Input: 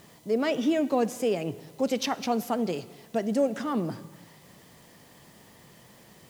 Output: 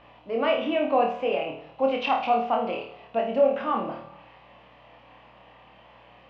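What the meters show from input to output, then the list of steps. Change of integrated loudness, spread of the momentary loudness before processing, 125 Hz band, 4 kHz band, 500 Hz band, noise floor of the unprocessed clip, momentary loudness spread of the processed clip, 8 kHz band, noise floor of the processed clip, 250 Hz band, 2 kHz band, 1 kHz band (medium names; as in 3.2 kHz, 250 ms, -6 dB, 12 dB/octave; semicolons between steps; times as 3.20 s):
+2.5 dB, 10 LU, -8.5 dB, +1.0 dB, +3.5 dB, -55 dBFS, 10 LU, under -25 dB, -53 dBFS, -4.0 dB, +4.5 dB, +8.5 dB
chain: cabinet simulation 330–2900 Hz, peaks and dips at 390 Hz -9 dB, 560 Hz +4 dB, 790 Hz +6 dB, 1.1 kHz +6 dB, 1.8 kHz -4 dB, 2.7 kHz +9 dB; hum 60 Hz, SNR 31 dB; on a send: flutter echo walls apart 4.5 m, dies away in 0.46 s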